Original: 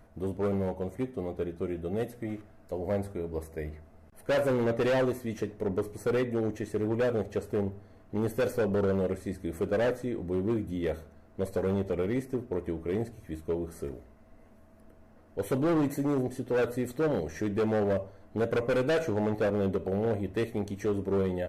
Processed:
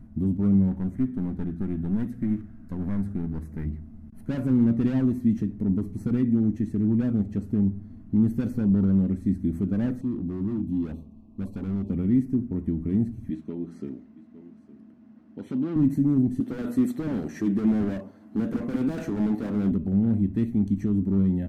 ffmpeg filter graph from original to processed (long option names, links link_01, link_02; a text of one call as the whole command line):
ffmpeg -i in.wav -filter_complex "[0:a]asettb=1/sr,asplit=3[link_01][link_02][link_03];[link_01]atrim=end=0.714[link_04];[link_02]atrim=start=0.71:end=3.66,asetpts=PTS-STARTPTS,afade=type=in:duration=0.004:curve=qsin,afade=type=out:start_time=2.946:duration=0.004:curve=qsin,aeval=exprs='clip(val(0),-1,0.01)':channel_layout=same,equalizer=frequency=1600:width=1.9:gain=7.5[link_05];[link_03]atrim=start=3.656[link_06];[link_04][link_05]acrossfade=duration=0.004:curve1=hsin:curve2=qsin[link_07];[link_07][link_06]acrossfade=duration=0.004:curve1=qsin:curve2=hsin,asettb=1/sr,asplit=3[link_08][link_09][link_10];[link_08]atrim=end=10.014[link_11];[link_09]atrim=start=10.01:end=11.9,asetpts=PTS-STARTPTS,afade=type=in:duration=0.004:curve=qsin,afade=type=out:start_time=1.886:duration=0.004:curve=qsin,asuperstop=centerf=1700:order=20:qfactor=1.4,bass=frequency=250:gain=-8,treble=frequency=4000:gain=-7,volume=35dB,asoftclip=hard,volume=-35dB[link_12];[link_10]atrim=start=11.896[link_13];[link_11][link_12]acrossfade=duration=0.004:curve1=hsin:curve2=qsin[link_14];[link_14][link_13]acrossfade=duration=0.004:curve1=qsin:curve2=hsin,asettb=1/sr,asplit=3[link_15][link_16][link_17];[link_15]atrim=end=13.304[link_18];[link_16]atrim=start=13.3:end=15.76,asetpts=PTS-STARTPTS,afade=type=in:duration=0.004:curve=qsin,afade=type=out:start_time=2.456:duration=0.004:curve=qsin,highpass=270,lowpass=6000,equalizer=frequency=3200:width=0.93:gain=4.5,aecho=1:1:859:0.112,atrim=end_sample=108486[link_19];[link_17]atrim=start=15.756[link_20];[link_18][link_19]acrossfade=duration=0.004:curve1=hsin:curve2=qsin[link_21];[link_21][link_20]acrossfade=duration=0.004:curve1=qsin:curve2=hsin,asettb=1/sr,asplit=3[link_22][link_23][link_24];[link_22]atrim=end=16.404[link_25];[link_23]atrim=start=16.4:end=19.72,asetpts=PTS-STARTPTS,afade=type=in:duration=0.004:curve=qsin,afade=type=out:start_time=3.316:duration=0.004:curve=qsin,highpass=380,acontrast=69,volume=27dB,asoftclip=hard,volume=-27dB[link_26];[link_24]atrim=start=19.716[link_27];[link_25][link_26]acrossfade=duration=0.004:curve1=hsin:curve2=qsin[link_28];[link_28][link_27]acrossfade=duration=0.004:curve1=qsin:curve2=hsin,tiltshelf=frequency=1100:gain=3,alimiter=limit=-24dB:level=0:latency=1:release=240,lowshelf=frequency=340:width_type=q:width=3:gain=12,volume=-5dB" out.wav